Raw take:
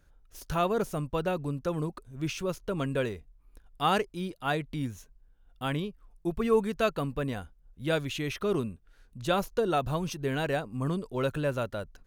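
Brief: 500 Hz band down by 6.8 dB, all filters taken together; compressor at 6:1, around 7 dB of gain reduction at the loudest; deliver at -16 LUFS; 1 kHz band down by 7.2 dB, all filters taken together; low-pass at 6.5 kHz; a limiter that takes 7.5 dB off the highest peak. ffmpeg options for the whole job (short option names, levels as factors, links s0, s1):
-af "lowpass=6500,equalizer=f=500:t=o:g=-6.5,equalizer=f=1000:t=o:g=-8,acompressor=threshold=0.0224:ratio=6,volume=17.8,alimiter=limit=0.531:level=0:latency=1"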